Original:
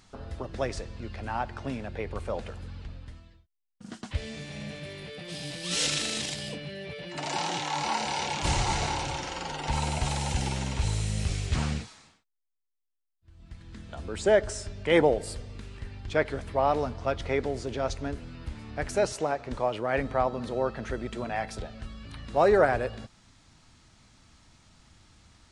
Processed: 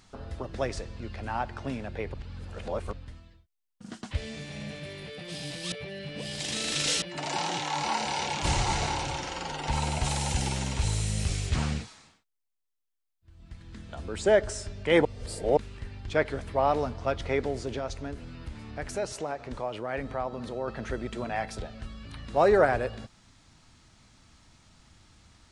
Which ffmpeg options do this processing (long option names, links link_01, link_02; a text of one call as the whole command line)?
ffmpeg -i in.wav -filter_complex "[0:a]asettb=1/sr,asplit=3[link_01][link_02][link_03];[link_01]atrim=end=10.044[link_04];[link_02]atrim=start=10.04:end=11.5,asetpts=PTS-STARTPTS,afade=type=in:duration=0.004:curve=qsin,afade=type=out:start_time=1.456:duration=0.004:curve=qsin,highshelf=frequency=6600:gain=6.5[link_05];[link_03]atrim=start=11.496[link_06];[link_04][link_05]acrossfade=duration=0.004:curve1=hsin:curve2=qsin[link_07];[link_07][link_06]acrossfade=duration=0.004:curve1=qsin:curve2=hsin,asettb=1/sr,asplit=3[link_08][link_09][link_10];[link_08]atrim=end=17.794[link_11];[link_09]atrim=start=17.79:end=20.68,asetpts=PTS-STARTPTS,afade=type=in:duration=0.004:curve=qsin,afade=type=out:start_time=2.886:duration=0.004:curve=qsin,acompressor=threshold=-37dB:ratio=1.5:attack=3.2:release=140:knee=1:detection=peak[link_12];[link_10]atrim=start=20.676[link_13];[link_11][link_12]acrossfade=duration=0.004:curve1=hsin:curve2=qsin[link_14];[link_14][link_13]acrossfade=duration=0.004:curve1=qsin:curve2=hsin,asplit=7[link_15][link_16][link_17][link_18][link_19][link_20][link_21];[link_15]atrim=end=2.142[link_22];[link_16]atrim=start=2.138:end=2.932,asetpts=PTS-STARTPTS,areverse[link_23];[link_17]atrim=start=2.928:end=5.722[link_24];[link_18]atrim=start=5.718:end=7.022,asetpts=PTS-STARTPTS,areverse[link_25];[link_19]atrim=start=7.018:end=15.052[link_26];[link_20]atrim=start=15.048:end=15.572,asetpts=PTS-STARTPTS,areverse[link_27];[link_21]atrim=start=15.568[link_28];[link_22][link_23]acrossfade=duration=0.004:curve1=hsin:curve2=hsin[link_29];[link_29][link_24]acrossfade=duration=0.004:curve1=hsin:curve2=hsin[link_30];[link_30][link_25]acrossfade=duration=0.004:curve1=hsin:curve2=hsin[link_31];[link_31][link_26]acrossfade=duration=0.004:curve1=hsin:curve2=hsin[link_32];[link_32][link_27]acrossfade=duration=0.004:curve1=hsin:curve2=hsin[link_33];[link_33][link_28]acrossfade=duration=0.004:curve1=hsin:curve2=hsin" out.wav